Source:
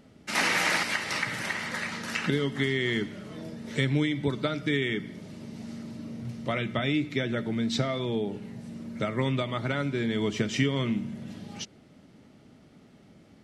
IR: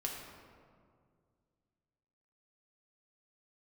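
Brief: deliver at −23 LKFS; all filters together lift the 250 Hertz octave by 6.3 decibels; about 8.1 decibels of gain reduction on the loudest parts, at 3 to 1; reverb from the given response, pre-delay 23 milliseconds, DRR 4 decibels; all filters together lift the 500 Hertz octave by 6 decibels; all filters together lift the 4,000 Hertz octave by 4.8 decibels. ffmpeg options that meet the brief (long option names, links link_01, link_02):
-filter_complex "[0:a]equalizer=frequency=250:width_type=o:gain=6,equalizer=frequency=500:width_type=o:gain=5.5,equalizer=frequency=4000:width_type=o:gain=6,acompressor=threshold=-27dB:ratio=3,asplit=2[link_01][link_02];[1:a]atrim=start_sample=2205,adelay=23[link_03];[link_02][link_03]afir=irnorm=-1:irlink=0,volume=-5.5dB[link_04];[link_01][link_04]amix=inputs=2:normalize=0,volume=6dB"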